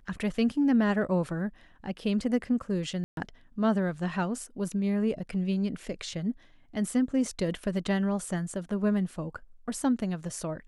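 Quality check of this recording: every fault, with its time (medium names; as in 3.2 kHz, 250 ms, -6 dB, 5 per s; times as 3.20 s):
3.04–3.17 s: dropout 132 ms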